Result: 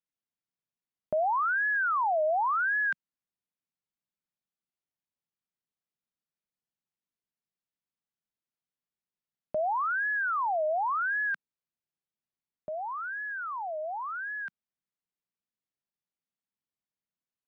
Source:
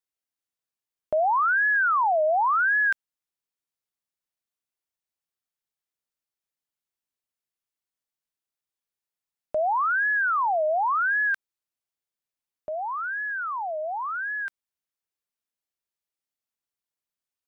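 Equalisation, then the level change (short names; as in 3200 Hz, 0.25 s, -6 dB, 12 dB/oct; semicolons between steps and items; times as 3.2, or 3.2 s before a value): air absorption 120 m; bell 180 Hz +10.5 dB 1.3 oct; -5.0 dB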